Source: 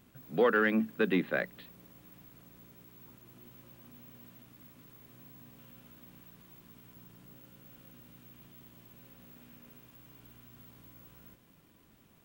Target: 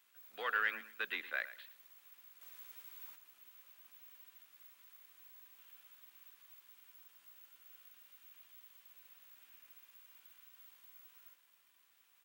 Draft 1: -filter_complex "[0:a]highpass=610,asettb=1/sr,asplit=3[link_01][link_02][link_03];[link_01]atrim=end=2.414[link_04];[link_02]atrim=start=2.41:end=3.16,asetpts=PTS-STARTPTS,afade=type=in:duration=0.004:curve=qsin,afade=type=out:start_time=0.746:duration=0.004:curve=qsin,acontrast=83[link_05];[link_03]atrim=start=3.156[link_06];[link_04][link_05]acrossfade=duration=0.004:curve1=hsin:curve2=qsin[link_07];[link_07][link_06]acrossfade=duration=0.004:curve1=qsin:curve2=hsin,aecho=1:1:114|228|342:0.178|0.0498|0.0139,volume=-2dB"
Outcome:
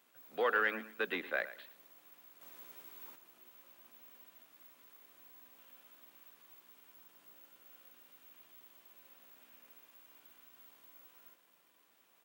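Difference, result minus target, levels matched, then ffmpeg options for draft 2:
500 Hz band +6.5 dB
-filter_complex "[0:a]highpass=1400,asettb=1/sr,asplit=3[link_01][link_02][link_03];[link_01]atrim=end=2.414[link_04];[link_02]atrim=start=2.41:end=3.16,asetpts=PTS-STARTPTS,afade=type=in:duration=0.004:curve=qsin,afade=type=out:start_time=0.746:duration=0.004:curve=qsin,acontrast=83[link_05];[link_03]atrim=start=3.156[link_06];[link_04][link_05]acrossfade=duration=0.004:curve1=hsin:curve2=qsin[link_07];[link_07][link_06]acrossfade=duration=0.004:curve1=qsin:curve2=hsin,aecho=1:1:114|228|342:0.178|0.0498|0.0139,volume=-2dB"

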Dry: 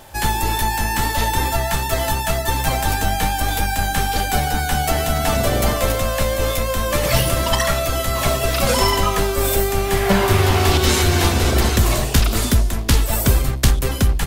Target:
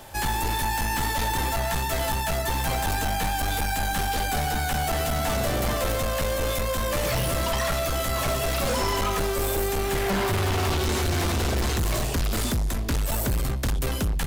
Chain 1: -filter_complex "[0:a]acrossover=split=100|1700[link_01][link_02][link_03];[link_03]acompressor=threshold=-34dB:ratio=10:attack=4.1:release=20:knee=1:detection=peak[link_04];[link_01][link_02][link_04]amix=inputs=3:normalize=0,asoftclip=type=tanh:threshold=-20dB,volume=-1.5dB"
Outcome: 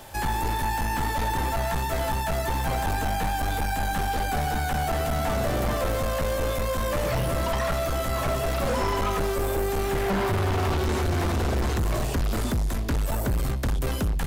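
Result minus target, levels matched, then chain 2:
downward compressor: peak gain reduction +8 dB
-filter_complex "[0:a]acrossover=split=100|1700[link_01][link_02][link_03];[link_03]acompressor=threshold=-25dB:ratio=10:attack=4.1:release=20:knee=1:detection=peak[link_04];[link_01][link_02][link_04]amix=inputs=3:normalize=0,asoftclip=type=tanh:threshold=-20dB,volume=-1.5dB"

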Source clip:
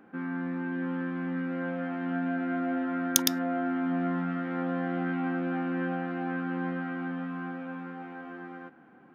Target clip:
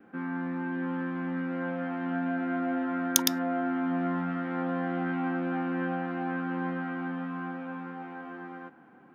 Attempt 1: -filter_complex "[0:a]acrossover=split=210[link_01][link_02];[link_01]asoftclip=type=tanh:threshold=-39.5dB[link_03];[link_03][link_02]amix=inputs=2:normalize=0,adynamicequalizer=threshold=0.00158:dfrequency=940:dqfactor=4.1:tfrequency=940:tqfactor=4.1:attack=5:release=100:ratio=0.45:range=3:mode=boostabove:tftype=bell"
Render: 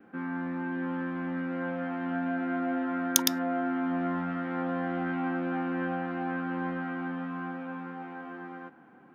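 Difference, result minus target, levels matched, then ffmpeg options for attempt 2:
soft clipping: distortion +10 dB
-filter_complex "[0:a]acrossover=split=210[link_01][link_02];[link_01]asoftclip=type=tanh:threshold=-32dB[link_03];[link_03][link_02]amix=inputs=2:normalize=0,adynamicequalizer=threshold=0.00158:dfrequency=940:dqfactor=4.1:tfrequency=940:tqfactor=4.1:attack=5:release=100:ratio=0.45:range=3:mode=boostabove:tftype=bell"

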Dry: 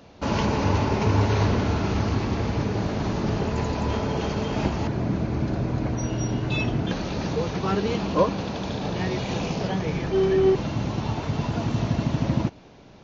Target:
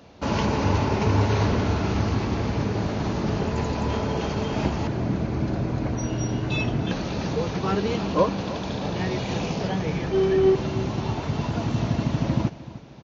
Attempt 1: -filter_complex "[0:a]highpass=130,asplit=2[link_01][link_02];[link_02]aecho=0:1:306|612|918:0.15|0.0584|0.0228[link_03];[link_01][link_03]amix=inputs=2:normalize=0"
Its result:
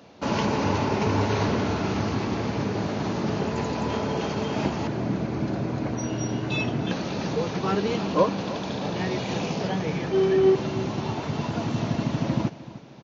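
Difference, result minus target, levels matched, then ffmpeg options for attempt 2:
125 Hz band −2.5 dB
-filter_complex "[0:a]highpass=34,asplit=2[link_01][link_02];[link_02]aecho=0:1:306|612|918:0.15|0.0584|0.0228[link_03];[link_01][link_03]amix=inputs=2:normalize=0"

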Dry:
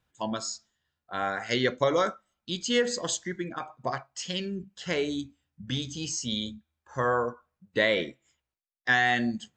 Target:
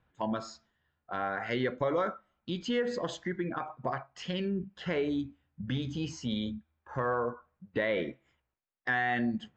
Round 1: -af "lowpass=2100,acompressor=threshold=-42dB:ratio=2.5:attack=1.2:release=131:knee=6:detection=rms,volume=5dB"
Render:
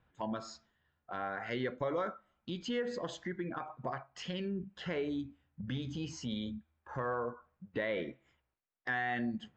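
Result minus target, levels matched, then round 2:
downward compressor: peak gain reduction +5 dB
-af "lowpass=2100,acompressor=threshold=-33.5dB:ratio=2.5:attack=1.2:release=131:knee=6:detection=rms,volume=5dB"

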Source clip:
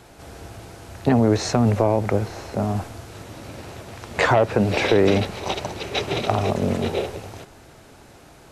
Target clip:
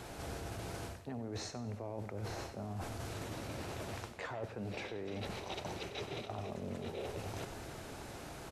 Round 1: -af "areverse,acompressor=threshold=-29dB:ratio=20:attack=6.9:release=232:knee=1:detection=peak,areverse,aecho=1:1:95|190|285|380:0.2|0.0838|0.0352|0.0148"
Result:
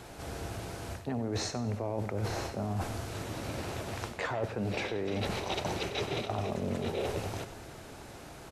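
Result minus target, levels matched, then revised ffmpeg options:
downward compressor: peak gain reduction −8.5 dB
-af "areverse,acompressor=threshold=-38dB:ratio=20:attack=6.9:release=232:knee=1:detection=peak,areverse,aecho=1:1:95|190|285|380:0.2|0.0838|0.0352|0.0148"

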